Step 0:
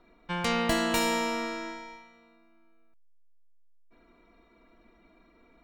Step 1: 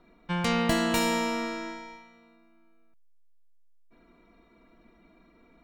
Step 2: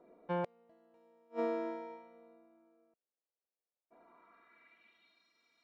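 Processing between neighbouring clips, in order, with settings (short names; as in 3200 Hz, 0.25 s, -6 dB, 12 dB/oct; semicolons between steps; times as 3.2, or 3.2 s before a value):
bell 160 Hz +6 dB 1.2 oct
flipped gate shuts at -18 dBFS, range -39 dB; band-pass sweep 520 Hz -> 5200 Hz, 3.73–5.29; gain +6 dB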